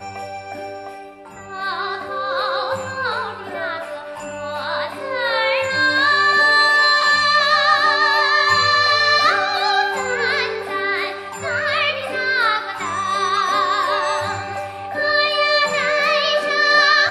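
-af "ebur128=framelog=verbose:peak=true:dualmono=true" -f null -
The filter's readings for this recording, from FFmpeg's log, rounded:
Integrated loudness:
  I:         -14.0 LUFS
  Threshold: -24.5 LUFS
Loudness range:
  LRA:        10.7 LU
  Threshold: -34.4 LUFS
  LRA low:   -21.3 LUFS
  LRA high:  -10.6 LUFS
True peak:
  Peak:       -3.3 dBFS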